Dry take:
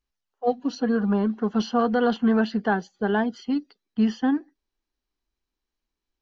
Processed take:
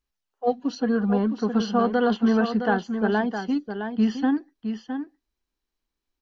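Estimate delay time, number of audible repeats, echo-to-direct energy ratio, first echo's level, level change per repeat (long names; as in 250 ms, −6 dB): 663 ms, 1, −8.0 dB, −8.0 dB, repeats not evenly spaced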